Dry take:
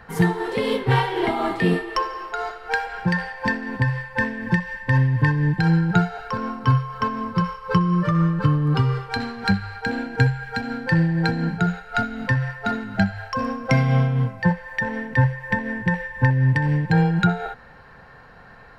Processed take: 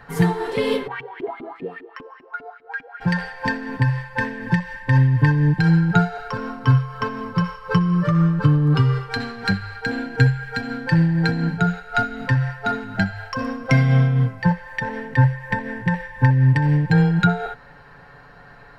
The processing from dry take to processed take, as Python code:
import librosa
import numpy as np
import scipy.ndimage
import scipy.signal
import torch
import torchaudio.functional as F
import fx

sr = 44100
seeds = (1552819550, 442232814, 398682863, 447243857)

y = fx.filter_lfo_bandpass(x, sr, shape='saw_up', hz=5.0, low_hz=230.0, high_hz=2500.0, q=5.2, at=(0.86, 3.0), fade=0.02)
y = y + 0.47 * np.pad(y, (int(7.0 * sr / 1000.0), 0))[:len(y)]